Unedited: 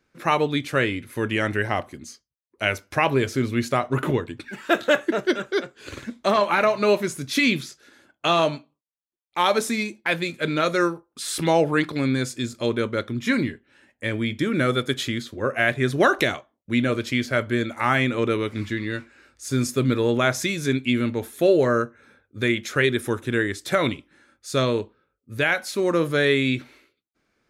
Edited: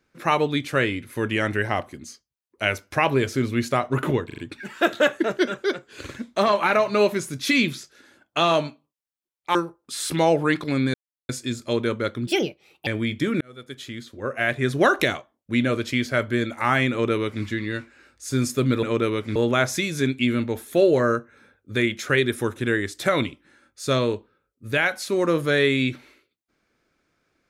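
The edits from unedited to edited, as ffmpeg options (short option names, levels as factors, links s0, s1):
-filter_complex "[0:a]asplit=11[s0][s1][s2][s3][s4][s5][s6][s7][s8][s9][s10];[s0]atrim=end=4.302[s11];[s1]atrim=start=4.258:end=4.302[s12];[s2]atrim=start=4.258:end=4.302[s13];[s3]atrim=start=4.258:end=9.432[s14];[s4]atrim=start=10.828:end=12.22,asetpts=PTS-STARTPTS,afade=t=out:st=1.388:d=0.004:c=hsin,apad=pad_dur=0.35[s15];[s5]atrim=start=12.22:end=13.204,asetpts=PTS-STARTPTS,afade=t=in:d=0.004:c=hsin[s16];[s6]atrim=start=13.2:end=14.06,asetpts=PTS-STARTPTS,asetrate=63504,aresample=44100[s17];[s7]atrim=start=14.056:end=14.6,asetpts=PTS-STARTPTS,afade=t=out:st=0.54:d=0.004:c=hsin[s18];[s8]atrim=start=14.6:end=20.022,asetpts=PTS-STARTPTS,afade=t=in:d=1.37[s19];[s9]atrim=start=18.098:end=18.632[s20];[s10]atrim=start=20.018[s21];[s11][s12]acrossfade=d=0.004:c1=hsin:c2=hsin[s22];[s22][s13]acrossfade=d=0.004:c1=hsin:c2=hsin[s23];[s23][s14]acrossfade=d=0.004:c1=hsin:c2=hsin[s24];[s15][s16]concat=n=2:v=0:a=1[s25];[s24][s25]acrossfade=d=0.004:c1=hsin:c2=hsin[s26];[s26][s17]acrossfade=d=0.004:c1=hsin:c2=hsin[s27];[s18][s19]concat=n=2:v=0:a=1[s28];[s27][s28]acrossfade=d=0.004:c1=hsin:c2=hsin[s29];[s29][s20]acrossfade=d=0.004:c1=hsin:c2=hsin[s30];[s30][s21]acrossfade=d=0.004:c1=hsin:c2=hsin"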